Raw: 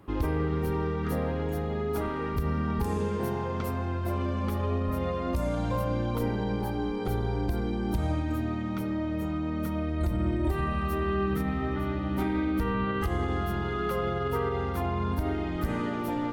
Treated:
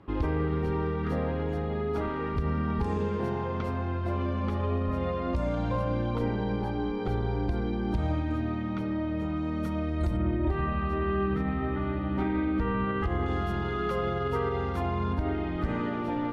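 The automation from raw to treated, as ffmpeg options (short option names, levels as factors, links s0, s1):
-af "asetnsamples=n=441:p=0,asendcmd='9.37 lowpass f 7400;10.17 lowpass f 2900;13.26 lowpass f 6400;15.13 lowpass f 3500',lowpass=4100"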